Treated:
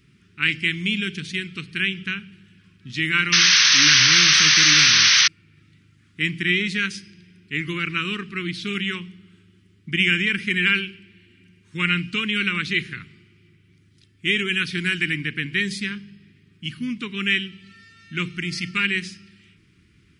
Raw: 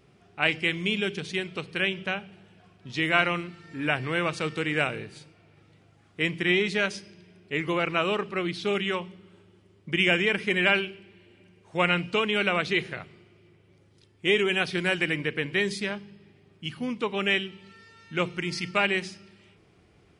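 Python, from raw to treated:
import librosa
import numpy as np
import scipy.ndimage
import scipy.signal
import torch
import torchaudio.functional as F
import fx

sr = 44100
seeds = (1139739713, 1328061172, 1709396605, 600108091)

y = fx.spec_paint(x, sr, seeds[0], shape='noise', start_s=3.32, length_s=1.96, low_hz=520.0, high_hz=6300.0, level_db=-18.0)
y = scipy.signal.sosfilt(scipy.signal.cheby1(2, 1.0, [260.0, 1700.0], 'bandstop', fs=sr, output='sos'), y)
y = F.gain(torch.from_numpy(y), 4.5).numpy()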